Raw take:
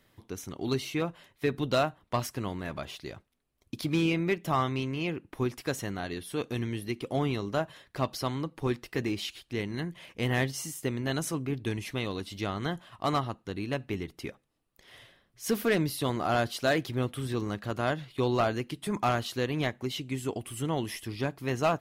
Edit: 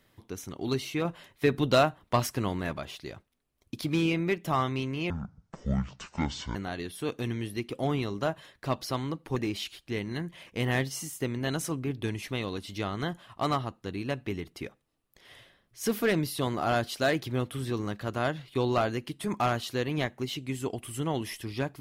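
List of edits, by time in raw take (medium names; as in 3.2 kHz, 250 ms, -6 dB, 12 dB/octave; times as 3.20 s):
1.05–2.73 s: gain +4 dB
5.10–5.87 s: speed 53%
8.68–8.99 s: delete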